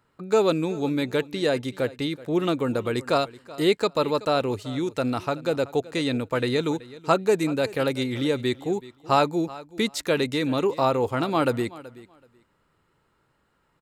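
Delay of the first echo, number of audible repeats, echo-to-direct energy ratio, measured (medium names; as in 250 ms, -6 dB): 378 ms, 2, -19.0 dB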